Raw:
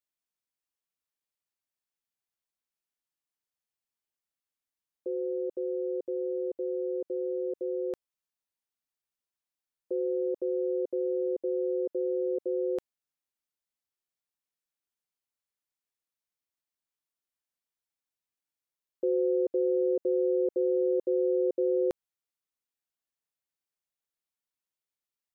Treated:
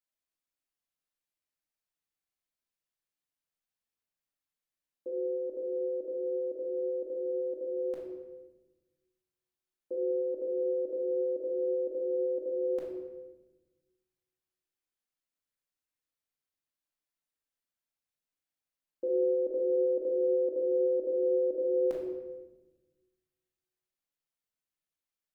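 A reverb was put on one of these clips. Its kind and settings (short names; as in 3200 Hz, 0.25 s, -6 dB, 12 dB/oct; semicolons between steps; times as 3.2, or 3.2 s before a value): shoebox room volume 630 m³, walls mixed, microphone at 2.1 m; gain -6 dB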